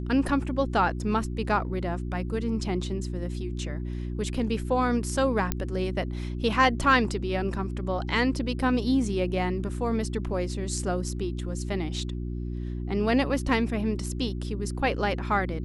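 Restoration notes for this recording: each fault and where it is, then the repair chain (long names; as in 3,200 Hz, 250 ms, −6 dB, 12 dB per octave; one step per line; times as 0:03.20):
mains hum 60 Hz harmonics 6 −32 dBFS
0:05.52: click −10 dBFS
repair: click removal
hum removal 60 Hz, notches 6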